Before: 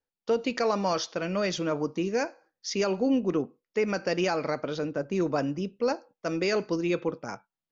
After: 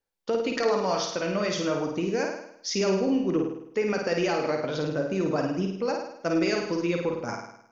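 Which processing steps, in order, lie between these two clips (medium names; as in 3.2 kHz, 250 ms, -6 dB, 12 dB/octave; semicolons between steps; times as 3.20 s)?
compression 2:1, threshold -29 dBFS, peak gain reduction 5 dB; flange 0.34 Hz, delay 5 ms, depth 3.7 ms, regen +72%; flutter echo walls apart 9 m, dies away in 0.73 s; trim +7 dB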